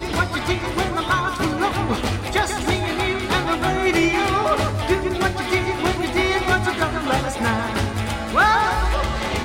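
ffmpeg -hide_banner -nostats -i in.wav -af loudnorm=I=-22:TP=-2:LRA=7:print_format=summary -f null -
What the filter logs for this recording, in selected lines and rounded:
Input Integrated:    -20.7 LUFS
Input True Peak:      -6.1 dBTP
Input LRA:             1.1 LU
Input Threshold:     -30.7 LUFS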